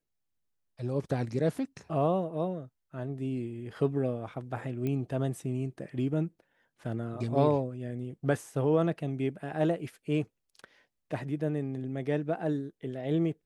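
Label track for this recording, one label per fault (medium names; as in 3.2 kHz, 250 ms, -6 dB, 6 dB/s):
4.870000	4.870000	pop -22 dBFS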